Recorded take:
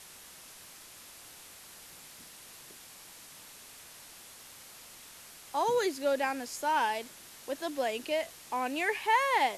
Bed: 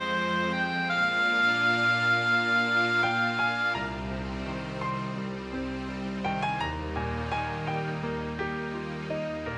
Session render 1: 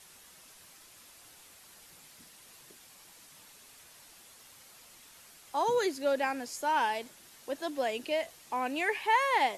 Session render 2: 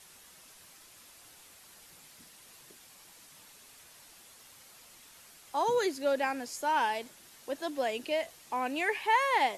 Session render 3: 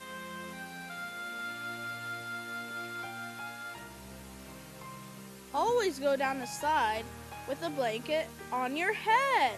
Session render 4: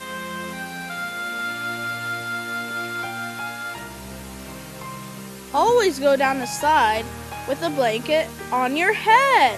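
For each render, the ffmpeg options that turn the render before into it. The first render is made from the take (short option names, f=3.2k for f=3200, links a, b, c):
-af "afftdn=nr=6:nf=-52"
-af anull
-filter_complex "[1:a]volume=-15dB[a];[0:a][a]amix=inputs=2:normalize=0"
-af "volume=11.5dB"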